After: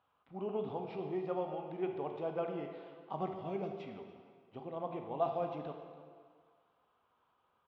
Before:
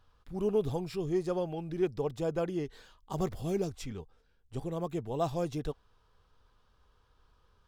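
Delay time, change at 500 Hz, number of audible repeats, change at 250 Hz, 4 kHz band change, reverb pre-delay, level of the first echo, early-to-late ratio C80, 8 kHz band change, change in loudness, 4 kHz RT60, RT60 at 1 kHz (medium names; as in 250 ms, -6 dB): 287 ms, -5.0 dB, 1, -7.5 dB, -9.5 dB, 17 ms, -18.0 dB, 6.5 dB, under -25 dB, -5.5 dB, 1.5 s, 1.9 s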